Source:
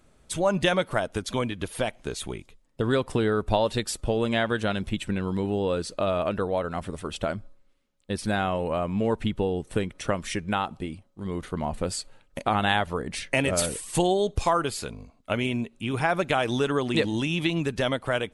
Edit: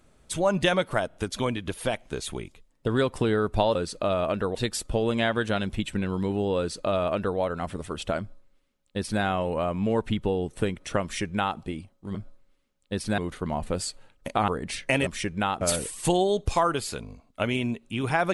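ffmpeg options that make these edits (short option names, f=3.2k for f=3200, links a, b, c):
-filter_complex "[0:a]asplit=10[a][b][c][d][e][f][g][h][i][j];[a]atrim=end=1.112[k];[b]atrim=start=1.078:end=1.112[l];[c]atrim=start=1.078:end=3.692[m];[d]atrim=start=5.718:end=6.522[n];[e]atrim=start=3.688:end=11.292[o];[f]atrim=start=7.328:end=8.362[p];[g]atrim=start=11.288:end=12.592[q];[h]atrim=start=12.918:end=13.512[r];[i]atrim=start=10.178:end=10.722[s];[j]atrim=start=13.508[t];[k][l]acrossfade=d=0.004:c1=hsin:c2=hsin[u];[u][m]acrossfade=d=0.004:c1=hsin:c2=hsin[v];[v][n]acrossfade=d=0.004:c1=hsin:c2=hsin[w];[w][o]acrossfade=d=0.004:c1=hsin:c2=hsin[x];[x][p]acrossfade=d=0.004:c1=hsin:c2=hsin[y];[y][q]acrossfade=d=0.004:c1=hsin:c2=hsin[z];[z][r]acrossfade=d=0.004:c1=hsin:c2=hsin[aa];[aa][s]acrossfade=d=0.004:c1=hsin:c2=hsin[ab];[ab][t]acrossfade=d=0.004:c1=hsin:c2=hsin"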